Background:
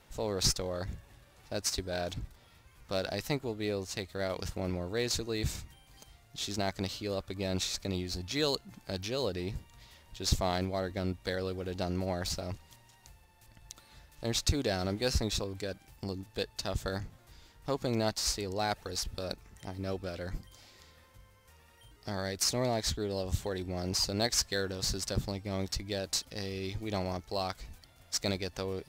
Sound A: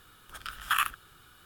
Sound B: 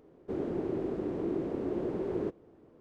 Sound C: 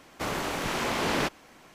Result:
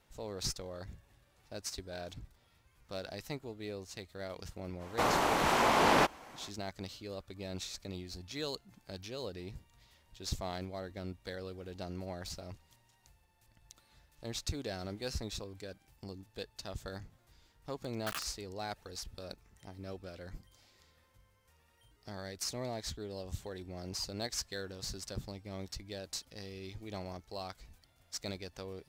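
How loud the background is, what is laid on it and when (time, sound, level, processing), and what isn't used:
background −8.5 dB
0:04.78: mix in C −2 dB, fades 0.05 s + parametric band 850 Hz +7.5 dB 1.3 octaves
0:17.36: mix in A −15.5 dB + bit reduction 4 bits
not used: B

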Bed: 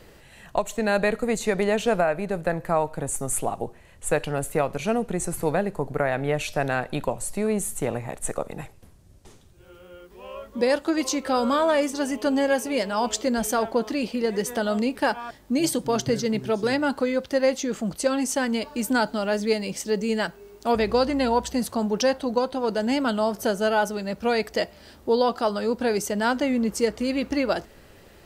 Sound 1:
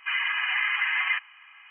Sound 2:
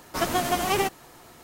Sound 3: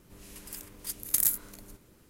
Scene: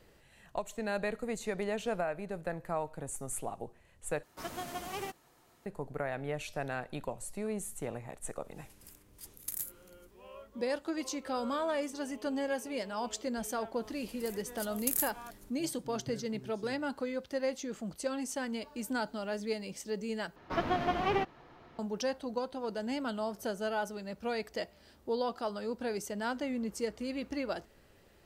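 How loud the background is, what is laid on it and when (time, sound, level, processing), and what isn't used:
bed −12 dB
0:04.23: overwrite with 2 −15.5 dB
0:08.34: mix in 3 −13 dB
0:13.73: mix in 3 −6.5 dB
0:20.36: overwrite with 2 −4.5 dB + high-frequency loss of the air 290 metres
not used: 1

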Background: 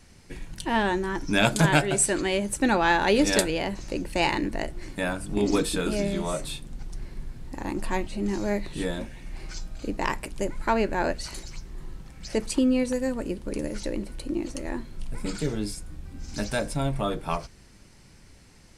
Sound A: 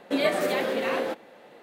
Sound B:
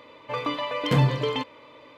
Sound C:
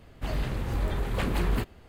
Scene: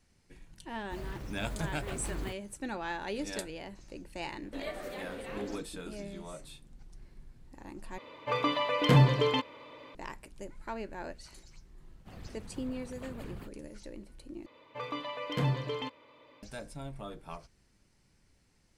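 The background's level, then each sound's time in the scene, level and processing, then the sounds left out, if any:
background −15.5 dB
0:00.69: mix in C −12 dB + one scale factor per block 5 bits
0:04.42: mix in A −15.5 dB
0:07.98: overwrite with B −1 dB
0:11.84: mix in C −17.5 dB + random phases in short frames
0:14.46: overwrite with B −9.5 dB

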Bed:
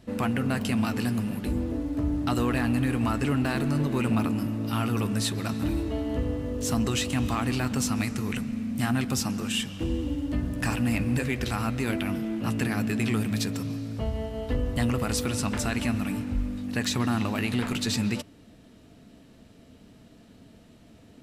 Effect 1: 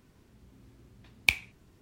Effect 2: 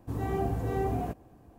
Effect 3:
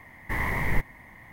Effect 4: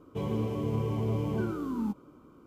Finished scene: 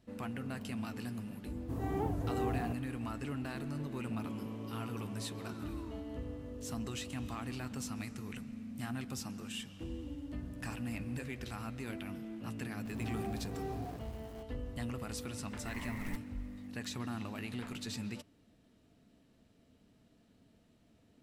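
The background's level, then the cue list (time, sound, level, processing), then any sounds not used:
bed −14 dB
0:01.61: mix in 2 −5.5 dB + wow of a warped record 78 rpm, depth 250 cents
0:04.08: mix in 4 −12 dB + meter weighting curve A
0:12.85: mix in 2 −12 dB + converter with a step at zero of −38 dBFS
0:15.36: mix in 3 −18 dB + floating-point word with a short mantissa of 2 bits
not used: 1

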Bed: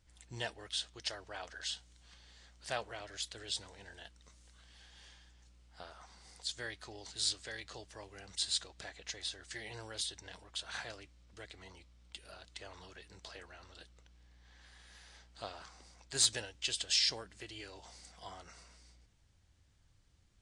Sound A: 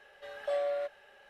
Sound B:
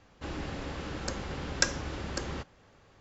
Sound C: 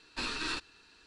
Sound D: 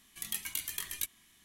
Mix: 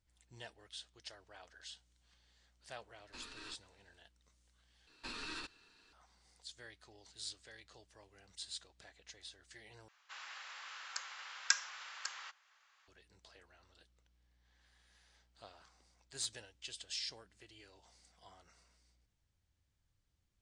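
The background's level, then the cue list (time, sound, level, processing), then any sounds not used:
bed −11.5 dB
0:02.96: mix in C −16.5 dB
0:04.87: overwrite with C −6.5 dB + brickwall limiter −28.5 dBFS
0:09.88: overwrite with B −4 dB + high-pass filter 1,100 Hz 24 dB per octave
not used: A, D

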